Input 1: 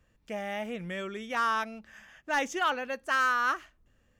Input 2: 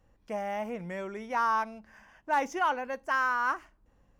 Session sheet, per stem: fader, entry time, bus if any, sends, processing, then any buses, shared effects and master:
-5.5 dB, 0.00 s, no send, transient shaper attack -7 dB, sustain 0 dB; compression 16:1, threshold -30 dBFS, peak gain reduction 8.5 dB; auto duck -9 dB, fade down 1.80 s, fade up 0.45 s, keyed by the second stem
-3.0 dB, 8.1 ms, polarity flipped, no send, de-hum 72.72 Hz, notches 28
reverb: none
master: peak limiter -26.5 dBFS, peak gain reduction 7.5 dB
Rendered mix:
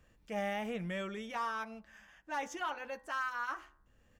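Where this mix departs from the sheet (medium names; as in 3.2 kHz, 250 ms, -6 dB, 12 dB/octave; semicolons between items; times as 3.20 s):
stem 1 -5.5 dB -> +2.5 dB; stem 2 -3.0 dB -> -11.0 dB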